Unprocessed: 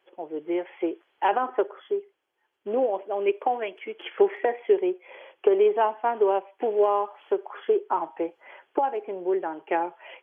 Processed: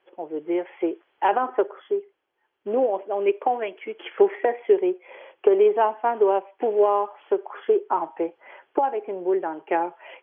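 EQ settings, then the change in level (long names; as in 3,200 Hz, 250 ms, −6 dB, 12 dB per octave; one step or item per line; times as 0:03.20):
high-frequency loss of the air 200 metres
+3.0 dB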